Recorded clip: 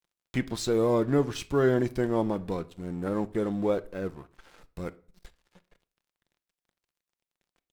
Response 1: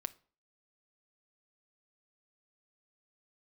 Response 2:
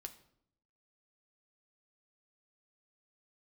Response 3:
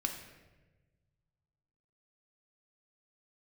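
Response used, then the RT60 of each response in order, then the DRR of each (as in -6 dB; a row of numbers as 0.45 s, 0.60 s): 1; 0.45 s, 0.70 s, 1.2 s; 12.0 dB, 6.0 dB, 3.5 dB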